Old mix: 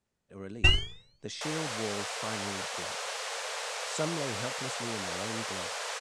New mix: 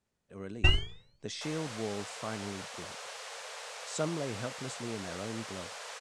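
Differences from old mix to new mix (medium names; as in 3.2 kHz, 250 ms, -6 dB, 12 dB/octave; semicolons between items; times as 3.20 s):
first sound: add treble shelf 3 kHz -9 dB; second sound -7.5 dB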